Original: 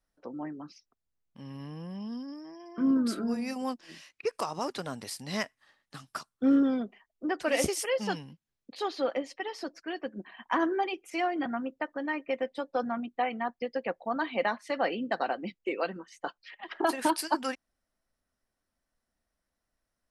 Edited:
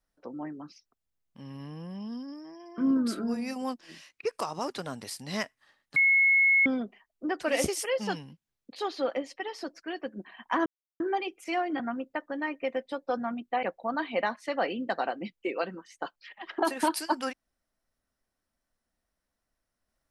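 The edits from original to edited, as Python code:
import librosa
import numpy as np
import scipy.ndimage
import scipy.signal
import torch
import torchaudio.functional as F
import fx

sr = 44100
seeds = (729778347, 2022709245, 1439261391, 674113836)

y = fx.edit(x, sr, fx.bleep(start_s=5.96, length_s=0.7, hz=2180.0, db=-18.5),
    fx.insert_silence(at_s=10.66, length_s=0.34),
    fx.cut(start_s=13.29, length_s=0.56), tone=tone)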